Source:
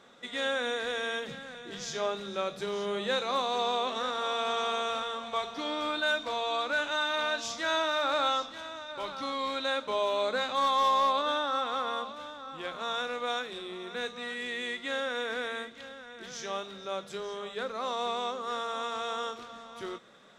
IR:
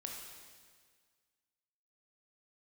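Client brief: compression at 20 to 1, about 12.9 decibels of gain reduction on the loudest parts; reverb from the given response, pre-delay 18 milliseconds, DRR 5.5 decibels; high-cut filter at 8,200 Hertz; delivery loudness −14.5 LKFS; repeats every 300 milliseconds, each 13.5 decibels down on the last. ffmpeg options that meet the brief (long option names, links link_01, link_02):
-filter_complex "[0:a]lowpass=8200,acompressor=threshold=-35dB:ratio=20,aecho=1:1:300|600:0.211|0.0444,asplit=2[link_01][link_02];[1:a]atrim=start_sample=2205,adelay=18[link_03];[link_02][link_03]afir=irnorm=-1:irlink=0,volume=-3.5dB[link_04];[link_01][link_04]amix=inputs=2:normalize=0,volume=23.5dB"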